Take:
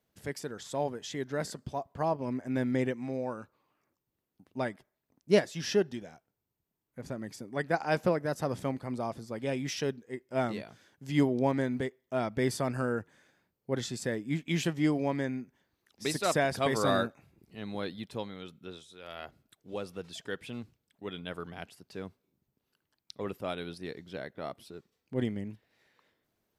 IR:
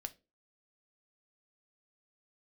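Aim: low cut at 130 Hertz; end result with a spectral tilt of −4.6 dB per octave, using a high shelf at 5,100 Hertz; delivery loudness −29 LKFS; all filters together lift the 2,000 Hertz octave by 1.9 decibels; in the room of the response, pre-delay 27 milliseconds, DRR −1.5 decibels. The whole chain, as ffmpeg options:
-filter_complex "[0:a]highpass=130,equalizer=frequency=2000:width_type=o:gain=3.5,highshelf=frequency=5100:gain=-8.5,asplit=2[link_01][link_02];[1:a]atrim=start_sample=2205,adelay=27[link_03];[link_02][link_03]afir=irnorm=-1:irlink=0,volume=4.5dB[link_04];[link_01][link_04]amix=inputs=2:normalize=0,volume=0.5dB"

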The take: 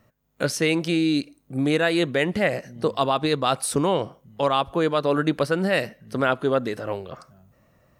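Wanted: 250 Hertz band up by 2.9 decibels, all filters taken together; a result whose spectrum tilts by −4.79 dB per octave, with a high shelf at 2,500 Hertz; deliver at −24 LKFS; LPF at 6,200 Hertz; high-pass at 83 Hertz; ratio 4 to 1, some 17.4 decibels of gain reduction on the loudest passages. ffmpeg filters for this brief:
ffmpeg -i in.wav -af "highpass=83,lowpass=6200,equalizer=frequency=250:width_type=o:gain=4,highshelf=frequency=2500:gain=5.5,acompressor=threshold=-37dB:ratio=4,volume=14dB" out.wav

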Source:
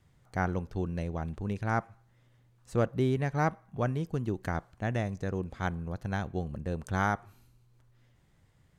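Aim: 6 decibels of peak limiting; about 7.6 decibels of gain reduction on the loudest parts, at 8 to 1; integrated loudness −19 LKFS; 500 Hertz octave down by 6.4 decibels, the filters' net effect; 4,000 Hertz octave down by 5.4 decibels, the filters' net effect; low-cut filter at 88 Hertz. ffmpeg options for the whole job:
ffmpeg -i in.wav -af "highpass=88,equalizer=frequency=500:width_type=o:gain=-8.5,equalizer=frequency=4000:width_type=o:gain=-7,acompressor=threshold=-33dB:ratio=8,volume=22.5dB,alimiter=limit=-7.5dB:level=0:latency=1" out.wav

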